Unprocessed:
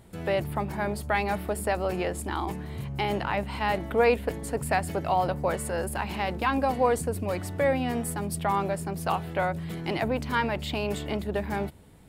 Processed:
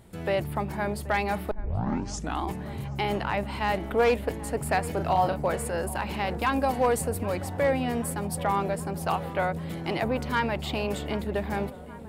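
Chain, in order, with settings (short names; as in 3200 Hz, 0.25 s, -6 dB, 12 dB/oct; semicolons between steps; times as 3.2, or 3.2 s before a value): 6.38–7.23 high shelf 6600 Hz +6 dB; hard clip -16.5 dBFS, distortion -25 dB; 1.51 tape start 0.93 s; 4.93–5.4 doubler 37 ms -6 dB; darkening echo 0.78 s, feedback 83%, low-pass 1800 Hz, level -17 dB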